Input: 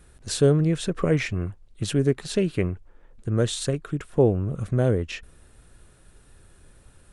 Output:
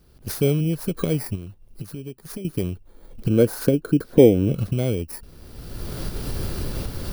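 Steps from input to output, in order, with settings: bit-reversed sample order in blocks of 16 samples; recorder AGC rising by 28 dB/s; peaking EQ 220 Hz +5.5 dB 2.9 oct; 1.35–2.45 s: compression 6:1, threshold -26 dBFS, peak gain reduction 14 dB; 3.29–4.53 s: small resonant body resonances 290/480/1500 Hz, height 11 dB, ringing for 20 ms; trim -6 dB

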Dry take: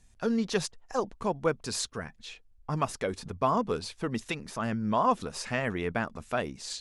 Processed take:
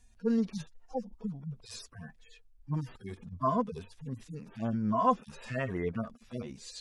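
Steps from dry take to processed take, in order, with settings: harmonic-percussive separation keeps harmonic; 0.53–1.89 s: dynamic bell 1.5 kHz, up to -4 dB, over -54 dBFS, Q 0.76

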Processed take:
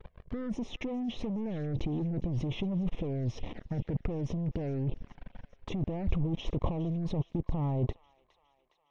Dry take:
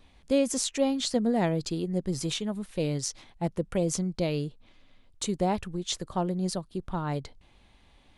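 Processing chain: fade out at the end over 1.99 s; treble shelf 2.3 kHz -6.5 dB; waveshaping leveller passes 5; compressor with a negative ratio -26 dBFS, ratio -1; touch-sensitive flanger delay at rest 2.3 ms, full sweep at -24.5 dBFS; tape spacing loss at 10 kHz 42 dB; feedback echo behind a high-pass 378 ms, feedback 61%, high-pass 1.4 kHz, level -17 dB; speed mistake 48 kHz file played as 44.1 kHz; trim -3 dB

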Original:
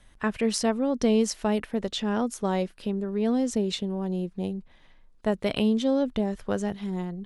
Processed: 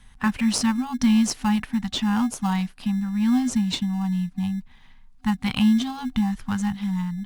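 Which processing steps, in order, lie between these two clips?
FFT band-reject 260–750 Hz; in parallel at -11 dB: sample-rate reducer 1.9 kHz, jitter 0%; on the sum: trim +4 dB

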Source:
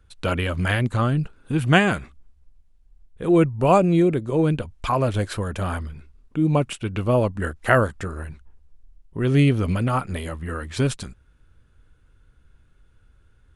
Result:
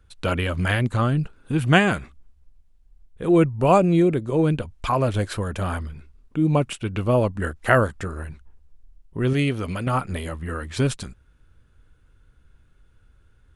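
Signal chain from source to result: 9.33–9.87 s: bass shelf 330 Hz -8 dB

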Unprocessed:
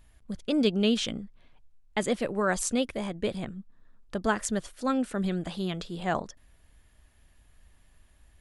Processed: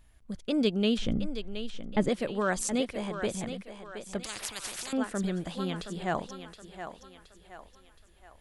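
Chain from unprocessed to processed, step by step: 0.98–2.09 s: tilt EQ -3.5 dB/octave; on a send: thinning echo 721 ms, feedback 45%, high-pass 280 Hz, level -9 dB; 4.23–4.93 s: on the sum: spectrum-flattening compressor 10:1; trim -2 dB

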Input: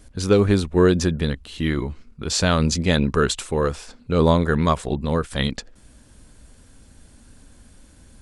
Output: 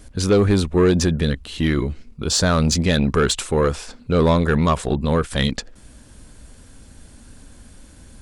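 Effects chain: 1.80–2.54 s: peaking EQ 770 Hz -> 3.2 kHz -14 dB 0.29 oct; in parallel at -3 dB: peak limiter -12 dBFS, peak gain reduction 7.5 dB; on the sum: saturation -8.5 dBFS, distortion -16 dB

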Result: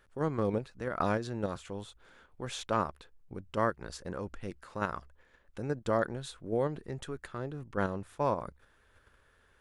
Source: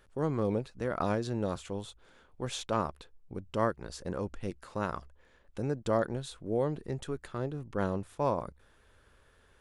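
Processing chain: peaking EQ 1.6 kHz +4.5 dB 1.2 oct; in parallel at +1 dB: level held to a coarse grid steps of 15 dB; on the sum: trim -6 dB

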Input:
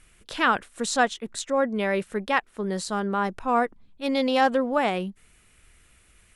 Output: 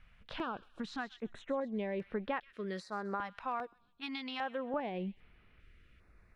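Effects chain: 2.53–4.74 s: tilt EQ +3.5 dB/octave; compression 6:1, threshold -29 dBFS, peak gain reduction 13 dB; distance through air 320 m; feedback echo behind a high-pass 130 ms, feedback 36%, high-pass 2.4 kHz, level -13.5 dB; step-sequenced notch 2.5 Hz 360–7300 Hz; trim -2.5 dB

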